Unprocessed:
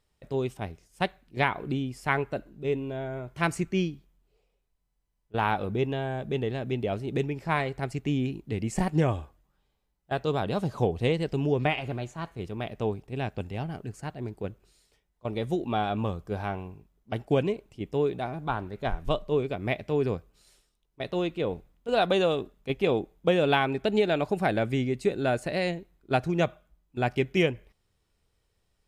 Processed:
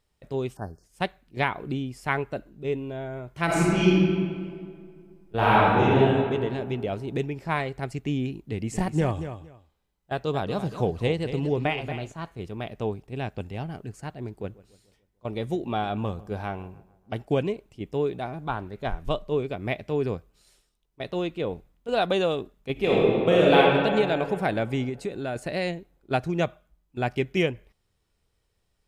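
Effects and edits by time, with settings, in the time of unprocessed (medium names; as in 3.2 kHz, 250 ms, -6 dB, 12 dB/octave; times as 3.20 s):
0.56–0.84 s: spectral selection erased 1.8–4.2 kHz
3.45–5.98 s: reverb throw, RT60 2.1 s, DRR -9 dB
8.43–12.12 s: feedback delay 230 ms, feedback 18%, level -10.5 dB
14.25–17.22 s: filtered feedback delay 146 ms, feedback 51%, level -20 dB
22.72–23.58 s: reverb throw, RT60 2.4 s, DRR -5.5 dB
24.89–25.36 s: compression 2:1, threshold -30 dBFS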